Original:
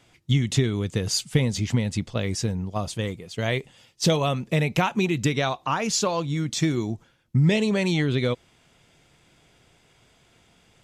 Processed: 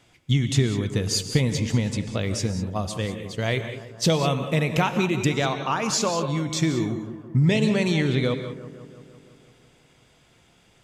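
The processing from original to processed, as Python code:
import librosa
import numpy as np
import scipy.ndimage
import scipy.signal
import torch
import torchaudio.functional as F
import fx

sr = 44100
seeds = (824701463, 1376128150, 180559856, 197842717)

y = fx.echo_bbd(x, sr, ms=168, stages=2048, feedback_pct=67, wet_db=-14)
y = fx.rev_gated(y, sr, seeds[0], gate_ms=220, shape='rising', drr_db=9.0)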